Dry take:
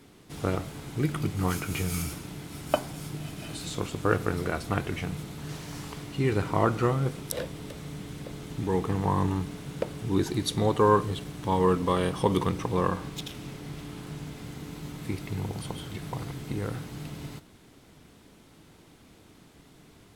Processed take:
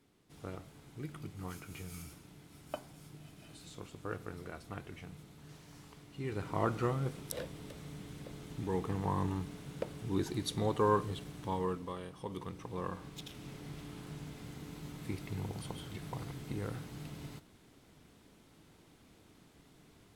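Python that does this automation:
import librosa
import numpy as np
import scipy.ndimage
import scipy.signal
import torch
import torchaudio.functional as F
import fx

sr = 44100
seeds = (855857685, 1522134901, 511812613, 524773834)

y = fx.gain(x, sr, db=fx.line((6.08, -16.0), (6.66, -8.0), (11.39, -8.0), (12.09, -19.5), (13.57, -7.0)))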